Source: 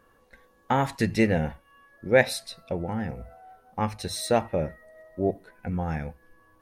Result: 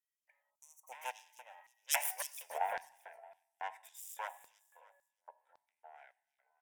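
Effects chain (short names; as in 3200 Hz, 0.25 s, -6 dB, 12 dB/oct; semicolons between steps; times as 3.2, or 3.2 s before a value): self-modulated delay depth 0.99 ms; Doppler pass-by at 2.36, 40 m/s, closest 3.2 m; Bessel high-pass 610 Hz, order 2; fixed phaser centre 1200 Hz, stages 6; feedback echo 0.312 s, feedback 28%, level -13 dB; LFO high-pass square 1.8 Hz 910–5000 Hz; on a send at -20 dB: comb 1.1 ms + reverb RT60 0.80 s, pre-delay 3 ms; on the sum: spectral gain 0.5–0.92, 1300–5600 Hz -25 dB; gain +12 dB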